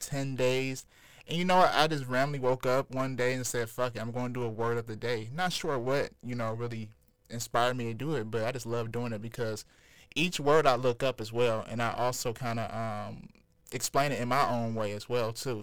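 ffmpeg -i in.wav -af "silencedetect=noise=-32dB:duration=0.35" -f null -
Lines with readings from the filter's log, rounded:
silence_start: 0.80
silence_end: 1.31 | silence_duration: 0.51
silence_start: 6.84
silence_end: 7.32 | silence_duration: 0.49
silence_start: 9.61
silence_end: 10.12 | silence_duration: 0.51
silence_start: 13.08
silence_end: 13.69 | silence_duration: 0.61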